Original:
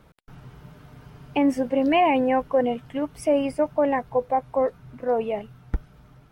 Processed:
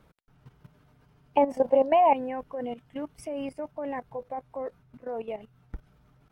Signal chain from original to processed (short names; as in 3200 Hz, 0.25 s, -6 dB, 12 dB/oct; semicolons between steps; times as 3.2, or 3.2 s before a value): 1.37–2.13 band shelf 740 Hz +13 dB 1.2 oct; level quantiser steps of 14 dB; gain -4.5 dB